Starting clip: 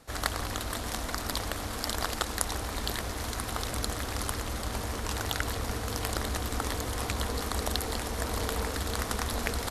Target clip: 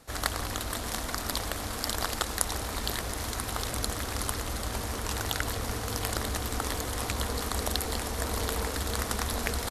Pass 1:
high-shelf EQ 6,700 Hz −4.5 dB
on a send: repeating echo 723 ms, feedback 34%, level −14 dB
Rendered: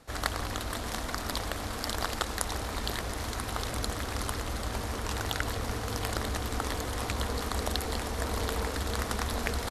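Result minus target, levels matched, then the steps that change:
8,000 Hz band −3.5 dB
change: high-shelf EQ 6,700 Hz +3.5 dB

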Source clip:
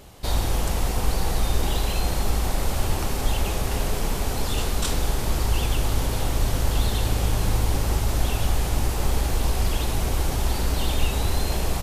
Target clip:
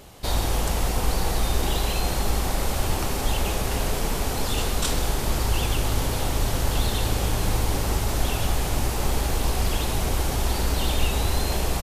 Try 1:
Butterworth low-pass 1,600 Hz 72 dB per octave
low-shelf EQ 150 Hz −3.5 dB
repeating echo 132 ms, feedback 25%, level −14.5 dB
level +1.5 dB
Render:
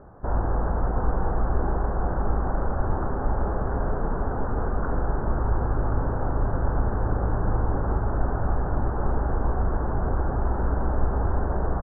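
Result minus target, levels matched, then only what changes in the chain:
2,000 Hz band −5.0 dB
remove: Butterworth low-pass 1,600 Hz 72 dB per octave

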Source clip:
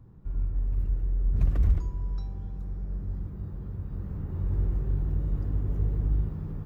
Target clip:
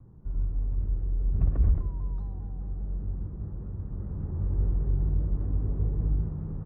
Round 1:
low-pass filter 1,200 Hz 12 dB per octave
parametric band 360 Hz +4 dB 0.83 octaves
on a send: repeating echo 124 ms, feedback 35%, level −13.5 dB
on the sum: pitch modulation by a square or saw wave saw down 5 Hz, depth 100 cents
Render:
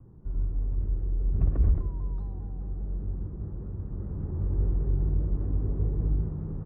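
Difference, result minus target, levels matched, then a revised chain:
500 Hz band +3.0 dB
low-pass filter 1,200 Hz 12 dB per octave
on a send: repeating echo 124 ms, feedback 35%, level −13.5 dB
on the sum: pitch modulation by a square or saw wave saw down 5 Hz, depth 100 cents

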